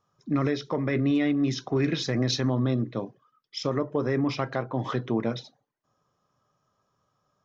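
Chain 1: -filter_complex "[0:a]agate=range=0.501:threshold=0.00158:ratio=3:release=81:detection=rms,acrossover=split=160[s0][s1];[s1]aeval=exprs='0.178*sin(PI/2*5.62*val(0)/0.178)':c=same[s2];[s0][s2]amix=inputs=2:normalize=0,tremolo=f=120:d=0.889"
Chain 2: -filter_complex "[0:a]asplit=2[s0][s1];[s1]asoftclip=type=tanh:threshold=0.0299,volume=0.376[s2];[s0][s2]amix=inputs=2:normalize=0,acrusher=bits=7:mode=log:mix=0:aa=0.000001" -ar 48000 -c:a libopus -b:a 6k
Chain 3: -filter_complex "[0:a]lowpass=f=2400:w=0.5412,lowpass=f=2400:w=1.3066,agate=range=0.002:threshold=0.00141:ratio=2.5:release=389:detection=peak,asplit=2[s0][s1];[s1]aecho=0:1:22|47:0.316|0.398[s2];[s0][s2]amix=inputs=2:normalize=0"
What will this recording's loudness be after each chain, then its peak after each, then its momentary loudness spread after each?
-23.0 LUFS, -28.0 LUFS, -27.0 LUFS; -13.0 dBFS, -14.0 dBFS, -13.0 dBFS; 6 LU, 9 LU, 6 LU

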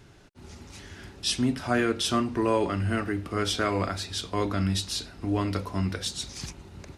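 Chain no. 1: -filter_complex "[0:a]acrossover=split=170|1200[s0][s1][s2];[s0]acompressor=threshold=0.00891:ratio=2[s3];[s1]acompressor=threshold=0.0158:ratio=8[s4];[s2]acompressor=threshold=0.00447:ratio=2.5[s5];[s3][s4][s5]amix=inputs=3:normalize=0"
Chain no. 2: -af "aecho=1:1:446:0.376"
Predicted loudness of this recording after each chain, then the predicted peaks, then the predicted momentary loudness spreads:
-37.5 LUFS, -27.5 LUFS; -23.0 dBFS, -11.5 dBFS; 10 LU, 14 LU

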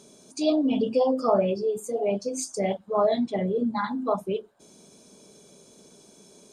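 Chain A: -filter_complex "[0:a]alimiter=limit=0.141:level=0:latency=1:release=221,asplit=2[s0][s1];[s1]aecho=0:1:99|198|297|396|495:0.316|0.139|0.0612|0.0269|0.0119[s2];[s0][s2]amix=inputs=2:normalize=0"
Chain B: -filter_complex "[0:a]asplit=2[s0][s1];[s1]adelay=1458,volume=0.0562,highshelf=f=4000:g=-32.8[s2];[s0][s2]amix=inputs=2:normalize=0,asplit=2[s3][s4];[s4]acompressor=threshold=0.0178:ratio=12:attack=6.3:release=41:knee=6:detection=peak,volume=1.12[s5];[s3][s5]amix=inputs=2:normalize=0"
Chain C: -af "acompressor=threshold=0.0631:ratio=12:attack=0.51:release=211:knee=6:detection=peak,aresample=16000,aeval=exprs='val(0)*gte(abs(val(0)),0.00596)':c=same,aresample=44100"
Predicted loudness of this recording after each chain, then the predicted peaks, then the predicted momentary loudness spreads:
-27.5 LUFS, -24.0 LUFS, -32.0 LUFS; -15.5 dBFS, -9.0 dBFS, -20.5 dBFS; 5 LU, 21 LU, 4 LU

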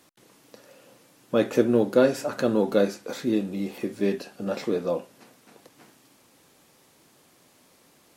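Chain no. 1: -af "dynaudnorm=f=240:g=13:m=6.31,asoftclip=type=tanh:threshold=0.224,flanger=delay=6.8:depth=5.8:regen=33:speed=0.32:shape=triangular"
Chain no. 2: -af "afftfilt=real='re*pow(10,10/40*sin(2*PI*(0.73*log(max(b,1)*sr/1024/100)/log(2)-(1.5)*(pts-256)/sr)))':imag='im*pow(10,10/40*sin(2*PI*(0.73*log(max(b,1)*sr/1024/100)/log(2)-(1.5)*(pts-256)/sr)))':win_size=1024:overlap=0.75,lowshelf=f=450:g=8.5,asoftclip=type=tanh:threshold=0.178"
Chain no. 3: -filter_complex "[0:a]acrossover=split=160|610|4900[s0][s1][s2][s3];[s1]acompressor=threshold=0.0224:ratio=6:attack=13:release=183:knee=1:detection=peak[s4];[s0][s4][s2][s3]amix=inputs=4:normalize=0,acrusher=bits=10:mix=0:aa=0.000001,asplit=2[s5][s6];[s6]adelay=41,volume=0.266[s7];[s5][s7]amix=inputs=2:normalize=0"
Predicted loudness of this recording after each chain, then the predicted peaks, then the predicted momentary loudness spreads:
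-26.5 LUFS, -23.5 LUFS, -30.5 LUFS; -13.5 dBFS, -15.0 dBFS, -14.0 dBFS; 21 LU, 6 LU, 8 LU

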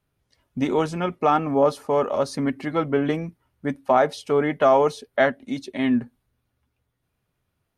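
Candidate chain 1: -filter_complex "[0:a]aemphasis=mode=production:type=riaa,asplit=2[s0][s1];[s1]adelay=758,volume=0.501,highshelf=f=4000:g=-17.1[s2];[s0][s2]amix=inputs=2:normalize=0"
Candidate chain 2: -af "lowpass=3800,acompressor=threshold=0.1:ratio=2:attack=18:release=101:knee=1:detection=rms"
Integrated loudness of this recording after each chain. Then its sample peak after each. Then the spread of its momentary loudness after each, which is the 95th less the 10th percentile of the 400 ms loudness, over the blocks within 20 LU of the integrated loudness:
-23.5 LUFS, -25.0 LUFS; -4.5 dBFS, -8.5 dBFS; 14 LU, 9 LU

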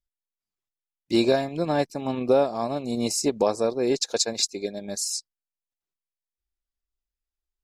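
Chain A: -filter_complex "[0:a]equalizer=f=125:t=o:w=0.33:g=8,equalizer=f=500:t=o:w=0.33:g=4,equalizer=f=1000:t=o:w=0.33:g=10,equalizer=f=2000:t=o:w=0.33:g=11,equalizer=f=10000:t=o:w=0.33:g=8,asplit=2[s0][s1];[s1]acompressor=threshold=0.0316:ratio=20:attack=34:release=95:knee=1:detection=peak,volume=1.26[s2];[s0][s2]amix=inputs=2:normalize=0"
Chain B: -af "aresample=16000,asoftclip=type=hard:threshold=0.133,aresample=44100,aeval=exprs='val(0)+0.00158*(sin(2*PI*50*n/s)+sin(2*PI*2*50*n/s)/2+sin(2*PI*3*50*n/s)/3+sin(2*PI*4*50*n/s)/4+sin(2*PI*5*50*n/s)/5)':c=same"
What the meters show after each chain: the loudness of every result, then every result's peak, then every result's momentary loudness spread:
-19.5 LUFS, -26.5 LUFS; -3.0 dBFS, -14.0 dBFS; 5 LU, 6 LU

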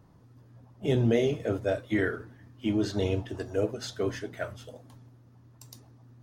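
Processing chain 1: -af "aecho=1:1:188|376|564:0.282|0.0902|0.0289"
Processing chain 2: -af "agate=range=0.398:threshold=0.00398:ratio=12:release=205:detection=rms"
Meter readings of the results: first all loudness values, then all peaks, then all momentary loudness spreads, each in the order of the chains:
-29.5 LUFS, -30.0 LUFS; -12.5 dBFS, -13.0 dBFS; 13 LU, 13 LU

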